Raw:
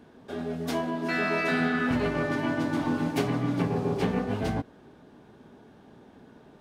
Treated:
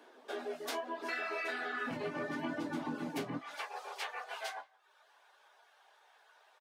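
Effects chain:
reverb reduction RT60 0.71 s
Bessel high-pass filter 530 Hz, order 6, from 0:01.86 200 Hz, from 0:03.37 1,100 Hz
downward compressor 5 to 1, threshold −37 dBFS, peak gain reduction 12.5 dB
flanger 0.76 Hz, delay 9.6 ms, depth 9.2 ms, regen −34%
far-end echo of a speakerphone 170 ms, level −25 dB
level +5 dB

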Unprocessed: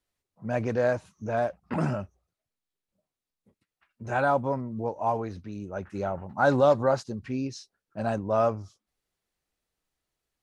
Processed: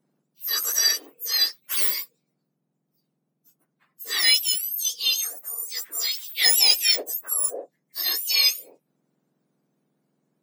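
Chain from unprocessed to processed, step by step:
frequency axis turned over on the octave scale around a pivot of 1,700 Hz
high-shelf EQ 6,600 Hz +8.5 dB
level +6 dB

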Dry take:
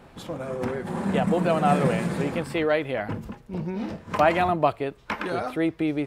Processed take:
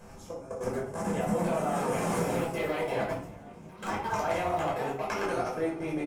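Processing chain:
high shelf with overshoot 4,800 Hz +7 dB, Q 3
on a send: echo with shifted repeats 363 ms, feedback 52%, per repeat +52 Hz, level −13 dB
on the sum: brickwall limiter −17 dBFS, peak gain reduction 9.5 dB
tuned comb filter 410 Hz, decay 0.75 s, mix 70%
delay with pitch and tempo change per echo 541 ms, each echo +4 semitones, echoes 3, each echo −6 dB
in parallel at +1 dB: downward compressor 8 to 1, threshold −48 dBFS, peak gain reduction 17 dB
on the sum: dynamic equaliser 190 Hz, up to −6 dB, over −46 dBFS, Q 1
output level in coarse steps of 19 dB
rectangular room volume 540 cubic metres, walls furnished, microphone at 5.3 metres

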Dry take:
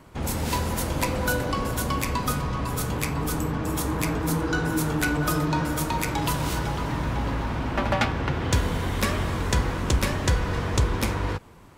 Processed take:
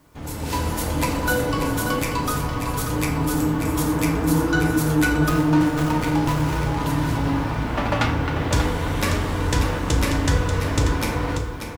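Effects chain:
bit-depth reduction 10 bits, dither triangular
automatic gain control gain up to 8.5 dB
single-tap delay 587 ms −8 dB
feedback delay network reverb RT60 0.58 s, low-frequency decay 1×, high-frequency decay 0.75×, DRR 2 dB
0:05.29–0:06.80: windowed peak hold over 9 samples
level −7.5 dB

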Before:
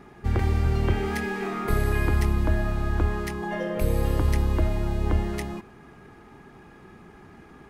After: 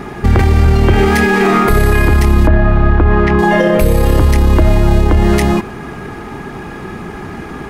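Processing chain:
0:02.47–0:03.39: low-pass filter 2,300 Hz 12 dB per octave
boost into a limiter +23 dB
level −1 dB

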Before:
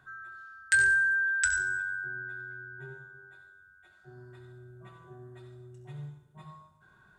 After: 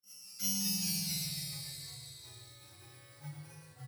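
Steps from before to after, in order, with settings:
samples in bit-reversed order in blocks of 64 samples
low-shelf EQ 80 Hz +11.5 dB
noise gate −57 dBFS, range −25 dB
volume swells 126 ms
phase-vocoder stretch with locked phases 0.54×
flanger swept by the level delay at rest 4.1 ms, full sweep at −31 dBFS
single-tap delay 115 ms −5 dB
convolution reverb RT60 1.0 s, pre-delay 3 ms, DRR −2 dB
delay with pitch and tempo change per echo 162 ms, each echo −2 semitones, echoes 3
level −6.5 dB

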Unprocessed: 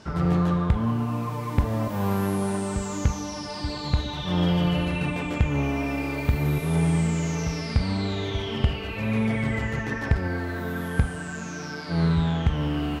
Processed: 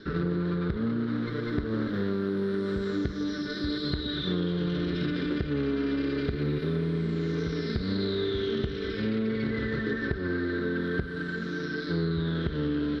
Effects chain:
lower of the sound and its delayed copy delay 0.55 ms
drawn EQ curve 110 Hz 0 dB, 410 Hz +15 dB, 770 Hz −9 dB, 1,500 Hz +9 dB, 2,500 Hz −4 dB, 4,100 Hz +11 dB, 7,200 Hz −21 dB
downward compressor, threshold −20 dBFS, peak gain reduction 9.5 dB
level −5 dB

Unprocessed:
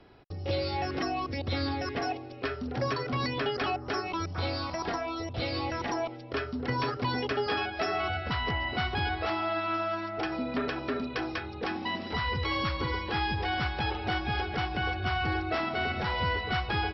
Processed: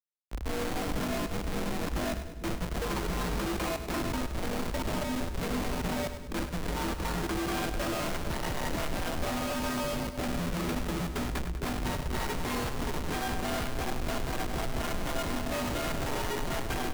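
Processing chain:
high-pass filter 43 Hz 12 dB per octave
comparator with hysteresis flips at −31 dBFS
echo with a time of its own for lows and highs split 570 Hz, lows 449 ms, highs 100 ms, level −10 dB
frequency shifter −76 Hz

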